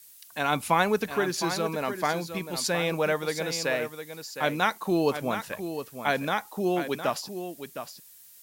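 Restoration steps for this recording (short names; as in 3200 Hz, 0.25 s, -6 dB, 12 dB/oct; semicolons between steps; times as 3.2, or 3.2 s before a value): noise print and reduce 22 dB; inverse comb 0.711 s -9.5 dB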